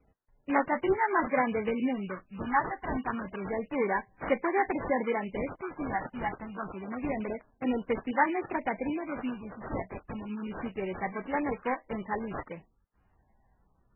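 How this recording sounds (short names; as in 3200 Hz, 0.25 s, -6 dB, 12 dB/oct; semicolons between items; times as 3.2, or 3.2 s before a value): phasing stages 6, 0.28 Hz, lowest notch 420–4700 Hz; aliases and images of a low sample rate 2700 Hz, jitter 20%; MP3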